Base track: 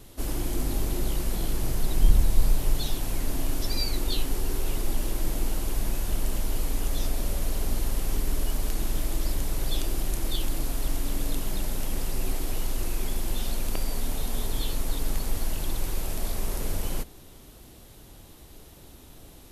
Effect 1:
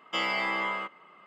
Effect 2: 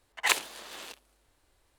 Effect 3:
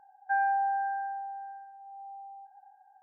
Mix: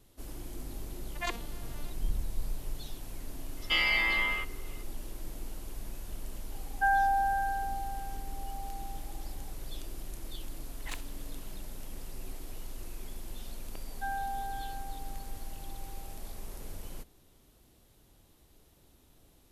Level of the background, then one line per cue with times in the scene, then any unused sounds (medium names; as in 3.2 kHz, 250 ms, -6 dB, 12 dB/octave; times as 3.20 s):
base track -13.5 dB
0.97 s: add 2 -8.5 dB + vocoder on a broken chord major triad, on A#3, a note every 109 ms
3.57 s: add 1 -7 dB + high-order bell 3 kHz +11 dB
6.52 s: add 3 -7 dB + peaking EQ 1.2 kHz +13.5 dB 1.4 oct
10.62 s: add 2 -18 dB
13.72 s: add 3 -9 dB